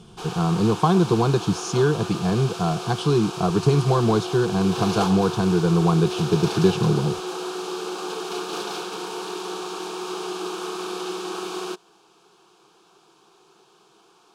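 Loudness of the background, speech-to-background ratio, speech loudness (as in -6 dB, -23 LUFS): -30.5 LUFS, 9.0 dB, -21.5 LUFS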